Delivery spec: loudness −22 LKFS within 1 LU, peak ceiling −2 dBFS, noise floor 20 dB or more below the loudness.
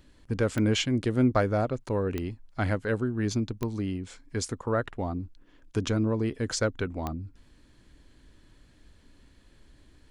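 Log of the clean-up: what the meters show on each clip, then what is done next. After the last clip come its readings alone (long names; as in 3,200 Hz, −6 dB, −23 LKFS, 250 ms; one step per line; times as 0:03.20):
number of clicks 4; integrated loudness −29.5 LKFS; sample peak −11.0 dBFS; target loudness −22.0 LKFS
→ click removal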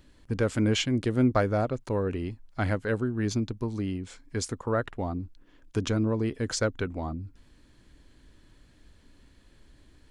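number of clicks 0; integrated loudness −29.5 LKFS; sample peak −11.0 dBFS; target loudness −22.0 LKFS
→ level +7.5 dB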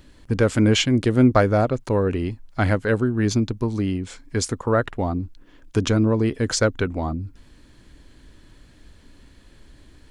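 integrated loudness −22.0 LKFS; sample peak −3.5 dBFS; background noise floor −51 dBFS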